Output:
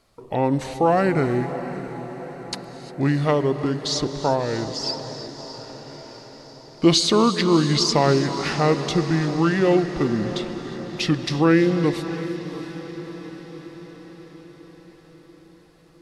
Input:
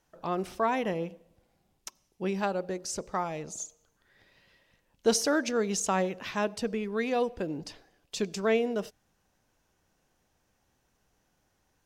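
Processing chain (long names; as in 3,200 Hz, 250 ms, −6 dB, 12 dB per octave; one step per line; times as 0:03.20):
in parallel at −3 dB: brickwall limiter −21 dBFS, peak gain reduction 8 dB
on the sum: speed change −26%
feedback delay with all-pass diffusion 652 ms, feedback 59%, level −12 dB
reverb whose tail is shaped and stops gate 380 ms rising, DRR 12 dB
level +5.5 dB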